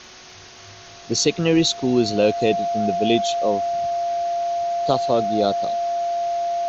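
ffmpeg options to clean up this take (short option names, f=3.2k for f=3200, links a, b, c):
-af "adeclick=t=4,bandreject=f=369.3:t=h:w=4,bandreject=f=738.6:t=h:w=4,bandreject=f=1.1079k:t=h:w=4,bandreject=f=1.4772k:t=h:w=4,bandreject=f=690:w=30,afwtdn=0.011"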